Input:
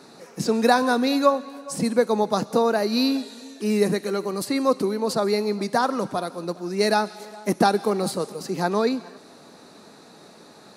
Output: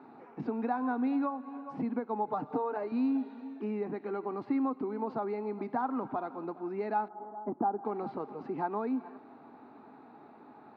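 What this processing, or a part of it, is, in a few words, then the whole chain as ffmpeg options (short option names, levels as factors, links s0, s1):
bass amplifier: -filter_complex "[0:a]asettb=1/sr,asplit=3[s0][s1][s2];[s0]atrim=end=2.274[s3];[s1]atrim=start=2.27:end=2.92,asetpts=PTS-STARTPTS,afade=t=in:d=0.004:c=qsin,afade=t=out:st=0.646:d=0.004:c=qsin,aecho=1:1:6.7:0.89,atrim=end_sample=28665[s4];[s2]atrim=start=2.916[s5];[s3][s4]acrossfade=d=0.004:c1=hsin:c2=qsin[s6];[s6][s5]acrossfade=d=0.004:c1=qsin:c2=hsin,asettb=1/sr,asplit=3[s7][s8][s9];[s7]atrim=end=7.084[s10];[s8]atrim=start=7.08:end=7.85,asetpts=PTS-STARTPTS,afade=t=in:d=0.004:c=qsin,afade=t=out:st=0.766:d=0.004:c=qsin,lowpass=f=1200:w=0.5412,lowpass=f=1200:w=1.3066[s11];[s9]atrim=start=7.846[s12];[s10][s11]acrossfade=d=0.004:c1=hsin:c2=qsin[s13];[s13][s12]acrossfade=d=0.004:c1=qsin:c2=hsin,acompressor=threshold=0.0562:ratio=4,highpass=87,equalizer=f=180:t=q:w=4:g=-10,equalizer=f=260:t=q:w=4:g=7,equalizer=f=540:t=q:w=4:g=-9,equalizer=f=830:t=q:w=4:g=8,equalizer=f=1800:t=q:w=4:g=-7,lowpass=f=2100:w=0.5412,lowpass=f=2100:w=1.3066,volume=0.531"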